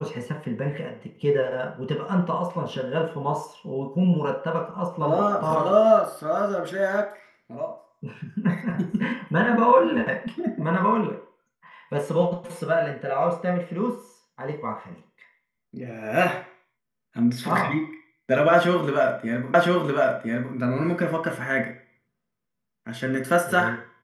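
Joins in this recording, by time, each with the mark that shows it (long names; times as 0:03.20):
0:19.54: the same again, the last 1.01 s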